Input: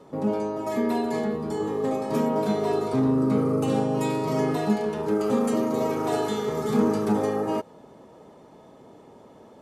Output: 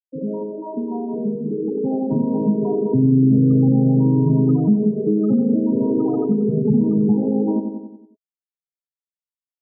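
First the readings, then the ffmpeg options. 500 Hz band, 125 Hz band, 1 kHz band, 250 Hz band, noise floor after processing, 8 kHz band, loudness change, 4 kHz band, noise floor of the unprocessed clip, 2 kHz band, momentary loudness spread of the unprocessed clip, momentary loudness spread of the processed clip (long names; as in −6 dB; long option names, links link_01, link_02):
+1.5 dB, +12.0 dB, −6.5 dB, +8.5 dB, below −85 dBFS, below −35 dB, +6.5 dB, below −40 dB, −50 dBFS, below −35 dB, 5 LU, 12 LU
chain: -filter_complex "[0:a]asoftclip=type=hard:threshold=-16dB,afftfilt=real='re*gte(hypot(re,im),0.158)':imag='im*gte(hypot(re,im),0.158)':win_size=1024:overlap=0.75,alimiter=limit=-21dB:level=0:latency=1:release=176,asubboost=boost=7:cutoff=210,dynaudnorm=framelen=390:gausssize=11:maxgain=11.5dB,highpass=frequency=120:width=0.5412,highpass=frequency=120:width=1.3066,asplit=2[link_01][link_02];[link_02]adelay=91,lowpass=frequency=1300:poles=1,volume=-8dB,asplit=2[link_03][link_04];[link_04]adelay=91,lowpass=frequency=1300:poles=1,volume=0.53,asplit=2[link_05][link_06];[link_06]adelay=91,lowpass=frequency=1300:poles=1,volume=0.53,asplit=2[link_07][link_08];[link_08]adelay=91,lowpass=frequency=1300:poles=1,volume=0.53,asplit=2[link_09][link_10];[link_10]adelay=91,lowpass=frequency=1300:poles=1,volume=0.53,asplit=2[link_11][link_12];[link_12]adelay=91,lowpass=frequency=1300:poles=1,volume=0.53[link_13];[link_03][link_05][link_07][link_09][link_11][link_13]amix=inputs=6:normalize=0[link_14];[link_01][link_14]amix=inputs=2:normalize=0,acompressor=threshold=-23dB:ratio=2,bandreject=frequency=650:width=12,adynamicequalizer=threshold=0.00891:dfrequency=960:dqfactor=1.8:tfrequency=960:tqfactor=1.8:attack=5:release=100:ratio=0.375:range=2:mode=cutabove:tftype=bell,volume=4dB"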